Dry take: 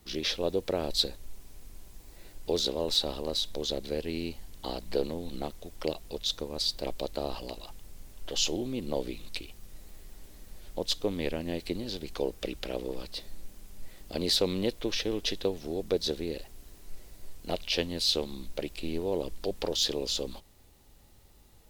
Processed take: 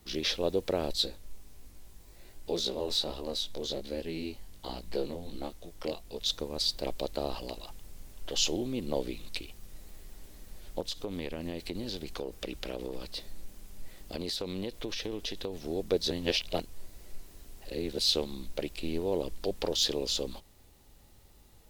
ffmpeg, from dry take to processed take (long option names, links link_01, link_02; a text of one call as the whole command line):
ffmpeg -i in.wav -filter_complex "[0:a]asettb=1/sr,asplit=3[link_01][link_02][link_03];[link_01]atrim=end=0.934[link_04];[link_02]atrim=start=0.93:end=6.2,asetpts=PTS-STARTPTS,afade=type=in:duration=0.004:curve=qsin,afade=type=out:start_time=5.266:duration=0.004:curve=qsin,flanger=delay=16.5:depth=5.5:speed=1.3[link_05];[link_03]atrim=start=6.196[link_06];[link_04][link_05]acrossfade=duration=0.004:curve1=hsin:curve2=qsin[link_07];[link_07][link_06]acrossfade=duration=0.004:curve1=qsin:curve2=hsin,asettb=1/sr,asplit=3[link_08][link_09][link_10];[link_08]atrim=end=10.804[link_11];[link_09]atrim=start=10.8:end=15.58,asetpts=PTS-STARTPTS,afade=type=in:duration=0.004:curve=qsin,afade=type=out:start_time=4.776:duration=0.004:curve=qsin,acompressor=threshold=-31dB:ratio=6:attack=3.2:release=140:knee=1:detection=peak[link_12];[link_10]atrim=start=15.576[link_13];[link_11][link_12]acrossfade=duration=0.004:curve1=hsin:curve2=qsin[link_14];[link_14][link_13]acrossfade=duration=0.004:curve1=qsin:curve2=hsin,asplit=3[link_15][link_16][link_17];[link_15]atrim=end=16.112[link_18];[link_16]atrim=start=16.108:end=17.982,asetpts=PTS-STARTPTS,areverse[link_19];[link_17]atrim=start=17.978[link_20];[link_18][link_19]acrossfade=duration=0.004:curve1=hsin:curve2=hsin[link_21];[link_21][link_20]acrossfade=duration=0.004:curve1=hsin:curve2=hsin" out.wav